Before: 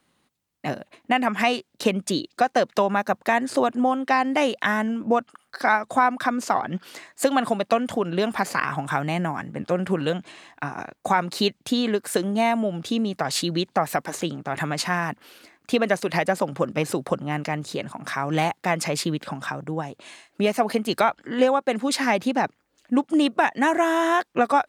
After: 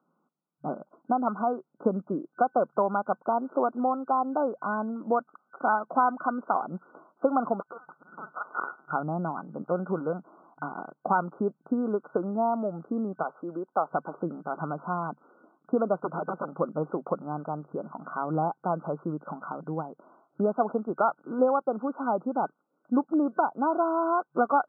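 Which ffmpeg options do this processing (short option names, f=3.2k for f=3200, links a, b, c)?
-filter_complex "[0:a]asettb=1/sr,asplit=3[a][b][c];[a]atrim=end=7.604[d];[b]atrim=start=7.6:end=8.93,asetpts=PTS-STARTPTS,afade=t=in:d=0.004:c=qsin,afade=t=out:st=1.326:d=0.004:c=qsin,lowpass=f=2.6k:t=q:w=0.5098,lowpass=f=2.6k:t=q:w=0.6013,lowpass=f=2.6k:t=q:w=0.9,lowpass=f=2.6k:t=q:w=2.563,afreqshift=-3000[e];[c]atrim=start=8.926[f];[d][e]acrossfade=d=0.004:c1=hsin:c2=qsin[g];[g][f]acrossfade=d=0.004:c1=qsin:c2=hsin,asettb=1/sr,asplit=3[h][i][j];[h]atrim=end=13.234[k];[i]atrim=start=13.23:end=13.92,asetpts=PTS-STARTPTS,afade=t=in:d=0.004:c=qsin,afade=t=out:st=0.686:d=0.004:c=qsin,highpass=370[l];[j]atrim=start=13.916[m];[k][l]acrossfade=d=0.004:c1=hsin:c2=qsin[n];[n][m]acrossfade=d=0.004:c1=qsin:c2=hsin,asettb=1/sr,asplit=3[o][p][q];[o]atrim=end=16.024[r];[p]atrim=start=16.02:end=16.54,asetpts=PTS-STARTPTS,afade=t=in:d=0.004:c=qsin,afade=t=out:st=0.516:d=0.004:c=qsin,aeval=exprs='(mod(6.68*val(0)+1,2)-1)/6.68':c=same[s];[q]atrim=start=16.536[t];[r][s]acrossfade=d=0.004:c1=hsin:c2=qsin[u];[u][t]acrossfade=d=0.004:c1=qsin:c2=hsin,afftfilt=real='re*between(b*sr/4096,140,1500)':imag='im*between(b*sr/4096,140,1500)':win_size=4096:overlap=0.75,adynamicequalizer=threshold=0.0141:dfrequency=200:dqfactor=0.82:tfrequency=200:tqfactor=0.82:attack=5:release=100:ratio=0.375:range=2.5:mode=cutabove:tftype=bell,volume=-3.5dB"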